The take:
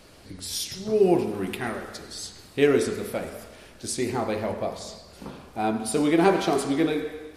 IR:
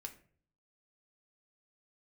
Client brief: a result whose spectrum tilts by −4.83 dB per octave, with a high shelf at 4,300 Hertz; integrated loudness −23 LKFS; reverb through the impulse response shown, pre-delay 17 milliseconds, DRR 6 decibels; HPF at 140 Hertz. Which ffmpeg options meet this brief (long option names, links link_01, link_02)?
-filter_complex "[0:a]highpass=140,highshelf=frequency=4300:gain=-9,asplit=2[link_01][link_02];[1:a]atrim=start_sample=2205,adelay=17[link_03];[link_02][link_03]afir=irnorm=-1:irlink=0,volume=-2dB[link_04];[link_01][link_04]amix=inputs=2:normalize=0,volume=2dB"